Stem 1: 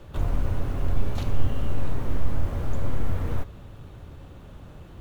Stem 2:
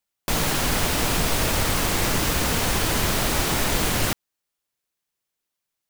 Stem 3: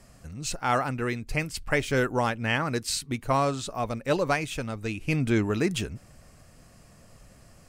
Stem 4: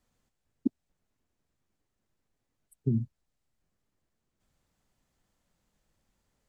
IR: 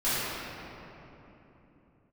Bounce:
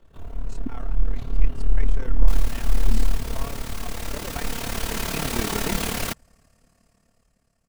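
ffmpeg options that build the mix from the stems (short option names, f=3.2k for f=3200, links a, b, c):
-filter_complex "[0:a]volume=-11.5dB,asplit=2[a][b];[b]volume=-11.5dB[c];[1:a]adelay=2000,volume=-16.5dB[d];[2:a]adelay=50,volume=-17.5dB[e];[3:a]volume=-6dB[f];[4:a]atrim=start_sample=2205[g];[c][g]afir=irnorm=-1:irlink=0[h];[a][d][e][f][h]amix=inputs=5:normalize=0,aecho=1:1:4.4:0.37,dynaudnorm=f=320:g=9:m=15dB,tremolo=f=36:d=0.71"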